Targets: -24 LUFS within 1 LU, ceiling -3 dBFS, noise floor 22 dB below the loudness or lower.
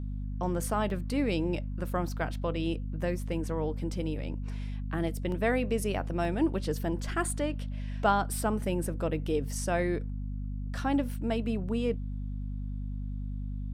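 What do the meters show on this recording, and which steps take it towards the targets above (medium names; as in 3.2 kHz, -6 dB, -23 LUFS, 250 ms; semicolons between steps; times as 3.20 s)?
dropouts 3; longest dropout 1.8 ms; hum 50 Hz; highest harmonic 250 Hz; hum level -32 dBFS; loudness -32.0 LUFS; peak level -13.0 dBFS; loudness target -24.0 LUFS
-> interpolate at 0.90/5.32/6.25 s, 1.8 ms; hum notches 50/100/150/200/250 Hz; trim +8 dB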